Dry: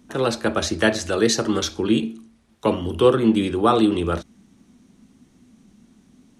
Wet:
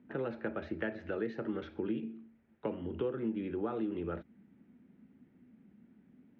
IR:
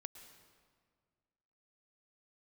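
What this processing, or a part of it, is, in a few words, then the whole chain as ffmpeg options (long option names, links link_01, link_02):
bass amplifier: -af "acompressor=threshold=-25dB:ratio=4,highpass=89,equalizer=frequency=100:width_type=q:width=4:gain=-4,equalizer=frequency=720:width_type=q:width=4:gain=-4,equalizer=frequency=1100:width_type=q:width=4:gain=-10,lowpass=frequency=2200:width=0.5412,lowpass=frequency=2200:width=1.3066,volume=-7.5dB"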